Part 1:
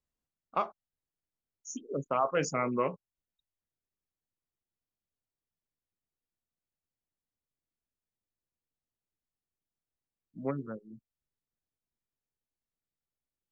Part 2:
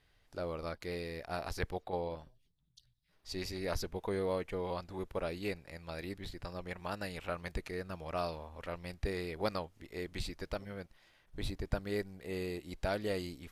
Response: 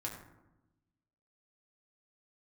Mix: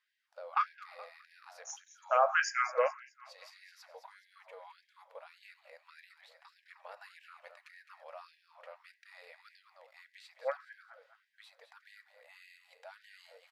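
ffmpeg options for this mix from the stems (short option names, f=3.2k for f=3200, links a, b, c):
-filter_complex "[0:a]equalizer=f=1k:t=o:w=0.33:g=-8,equalizer=f=1.6k:t=o:w=0.33:g=10,equalizer=f=5k:t=o:w=0.33:g=10,volume=2dB,asplit=3[a][b][c];[b]volume=-5.5dB[d];[c]volume=-13dB[e];[1:a]alimiter=level_in=5.5dB:limit=-24dB:level=0:latency=1:release=69,volume=-5.5dB,volume=-7dB,asplit=3[f][g][h];[g]volume=-8dB[i];[h]volume=-8dB[j];[2:a]atrim=start_sample=2205[k];[d][i]amix=inputs=2:normalize=0[l];[l][k]afir=irnorm=-1:irlink=0[m];[e][j]amix=inputs=2:normalize=0,aecho=0:1:211|422|633|844|1055|1266:1|0.42|0.176|0.0741|0.0311|0.0131[n];[a][f][m][n]amix=inputs=4:normalize=0,highshelf=f=3.7k:g=-11.5,afftfilt=real='re*gte(b*sr/1024,450*pow(1600/450,0.5+0.5*sin(2*PI*1.7*pts/sr)))':imag='im*gte(b*sr/1024,450*pow(1600/450,0.5+0.5*sin(2*PI*1.7*pts/sr)))':win_size=1024:overlap=0.75"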